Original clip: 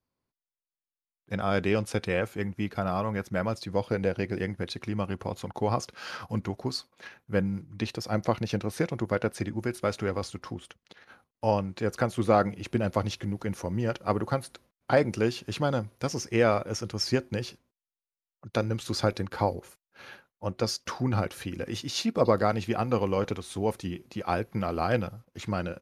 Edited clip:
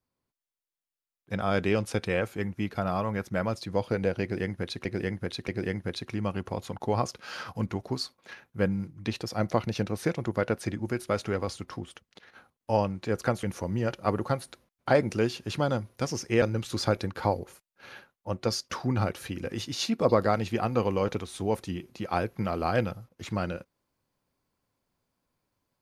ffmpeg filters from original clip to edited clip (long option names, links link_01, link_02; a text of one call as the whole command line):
ffmpeg -i in.wav -filter_complex "[0:a]asplit=5[link_01][link_02][link_03][link_04][link_05];[link_01]atrim=end=4.852[link_06];[link_02]atrim=start=4.218:end=4.852[link_07];[link_03]atrim=start=4.218:end=12.172[link_08];[link_04]atrim=start=13.448:end=16.442[link_09];[link_05]atrim=start=18.578[link_10];[link_06][link_07]acrossfade=duration=0.004:curve1=hsin:curve2=hsin[link_11];[link_11][link_08]acrossfade=duration=0.004:curve1=hsin:curve2=hsin[link_12];[link_12][link_09]acrossfade=duration=0.004:curve1=hsin:curve2=hsin[link_13];[link_13][link_10]acrossfade=duration=0.004:curve1=hsin:curve2=hsin" out.wav